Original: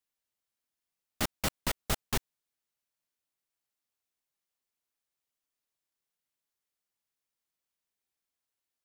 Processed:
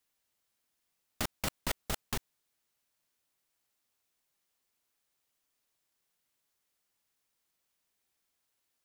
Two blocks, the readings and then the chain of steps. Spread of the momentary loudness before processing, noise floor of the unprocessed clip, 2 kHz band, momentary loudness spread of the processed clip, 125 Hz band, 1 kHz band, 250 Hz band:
3 LU, below −85 dBFS, −3.0 dB, 4 LU, −4.0 dB, −3.5 dB, −4.0 dB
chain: compressor whose output falls as the input rises −34 dBFS, ratio −1
level +2 dB

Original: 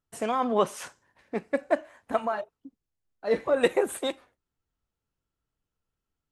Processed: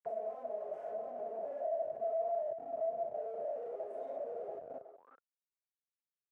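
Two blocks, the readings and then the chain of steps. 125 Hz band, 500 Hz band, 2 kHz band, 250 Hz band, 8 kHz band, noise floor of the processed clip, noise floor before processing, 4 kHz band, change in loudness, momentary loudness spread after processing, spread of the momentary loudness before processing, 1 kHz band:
below −20 dB, −8.5 dB, below −25 dB, −25.5 dB, below −35 dB, below −85 dBFS, below −85 dBFS, below −35 dB, −11.0 dB, 8 LU, 15 LU, −10.0 dB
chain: random phases in long frames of 200 ms
comb filter 4.7 ms, depth 74%
on a send: single-tap delay 684 ms −23.5 dB
on the sum: downward compressor 6 to 1, threshold −30 dBFS, peak gain reduction 13.5 dB
comparator with hysteresis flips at −49 dBFS
octave-band graphic EQ 125/500/1,000/4,000 Hz +7/+11/−5/−8 dB
far-end echo of a speakerphone 370 ms, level −10 dB
envelope filter 670–2,000 Hz, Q 15, down, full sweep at −37 dBFS
multiband upward and downward compressor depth 40%
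level +4.5 dB

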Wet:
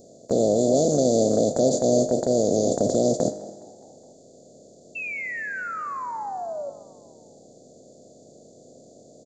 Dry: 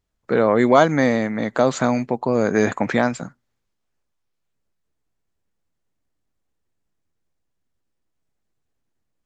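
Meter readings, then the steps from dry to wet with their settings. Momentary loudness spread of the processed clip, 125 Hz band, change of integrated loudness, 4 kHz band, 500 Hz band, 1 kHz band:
13 LU, −3.0 dB, −4.0 dB, −1.0 dB, −0.5 dB, −6.5 dB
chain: compressor on every frequency bin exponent 0.2
elliptic band-stop filter 590–4,500 Hz, stop band 40 dB
noise gate −14 dBFS, range −25 dB
high-shelf EQ 5,600 Hz +10.5 dB
in parallel at +0.5 dB: downward compressor, threshold −23 dBFS, peak gain reduction 15 dB
on the sum: brickwall limiter −4 dBFS, peak gain reduction 7 dB
sound drawn into the spectrogram fall, 0:04.95–0:06.70, 550–2,700 Hz −25 dBFS
tuned comb filter 51 Hz, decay 1.2 s, harmonics all, mix 60%
on a send: echo with shifted repeats 208 ms, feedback 56%, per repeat +41 Hz, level −22 dB

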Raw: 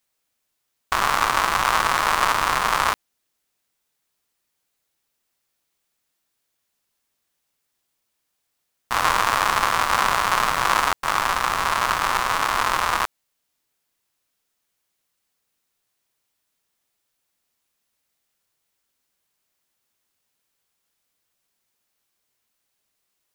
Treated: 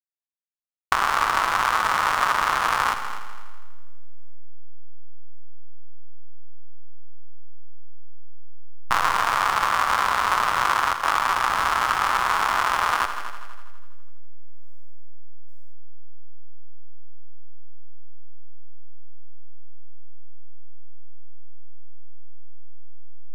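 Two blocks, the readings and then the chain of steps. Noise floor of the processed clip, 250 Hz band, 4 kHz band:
−27 dBFS, −4.5 dB, −3.0 dB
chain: in parallel at −7.5 dB: bit reduction 4 bits
on the sum: slack as between gear wheels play −22 dBFS
downward compressor, threshold −20 dBFS, peak gain reduction 10 dB
parametric band 1,300 Hz +5.5 dB 0.95 octaves
on a send: echo machine with several playback heads 82 ms, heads all three, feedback 44%, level −14.5 dB

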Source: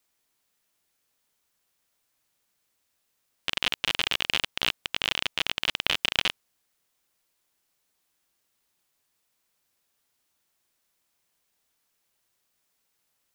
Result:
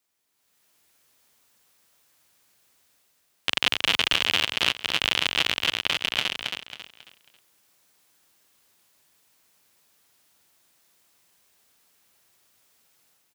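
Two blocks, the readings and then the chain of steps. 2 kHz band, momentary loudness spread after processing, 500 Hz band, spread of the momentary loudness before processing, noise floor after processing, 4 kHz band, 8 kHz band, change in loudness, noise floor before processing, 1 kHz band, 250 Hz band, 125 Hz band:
+4.0 dB, 11 LU, +4.0 dB, 4 LU, −70 dBFS, +4.0 dB, +4.0 dB, +3.5 dB, −76 dBFS, +4.0 dB, +4.0 dB, +3.0 dB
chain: high-pass filter 62 Hz
automatic gain control gain up to 12 dB
repeating echo 272 ms, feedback 33%, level −5 dB
level −2.5 dB

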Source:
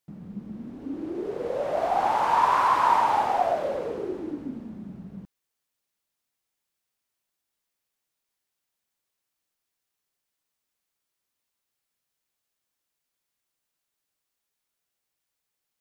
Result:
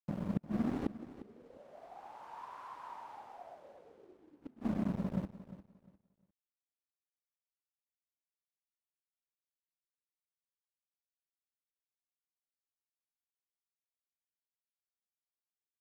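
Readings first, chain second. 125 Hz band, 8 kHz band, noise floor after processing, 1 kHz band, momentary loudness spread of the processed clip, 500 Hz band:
+1.5 dB, can't be measured, below −85 dBFS, −26.5 dB, 20 LU, −19.5 dB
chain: pitch vibrato 4.6 Hz 35 cents
dead-zone distortion −45.5 dBFS
gate with flip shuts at −28 dBFS, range −36 dB
on a send: repeating echo 352 ms, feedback 24%, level −15 dB
on the sum: level +8.5 dB

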